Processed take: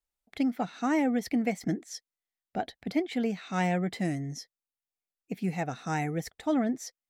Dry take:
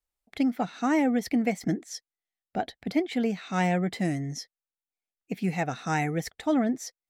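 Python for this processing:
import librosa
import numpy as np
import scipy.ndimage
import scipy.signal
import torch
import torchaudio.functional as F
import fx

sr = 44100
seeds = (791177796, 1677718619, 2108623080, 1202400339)

y = fx.peak_eq(x, sr, hz=2500.0, db=-3.0, octaves=2.7, at=(4.15, 6.44))
y = y * librosa.db_to_amplitude(-2.5)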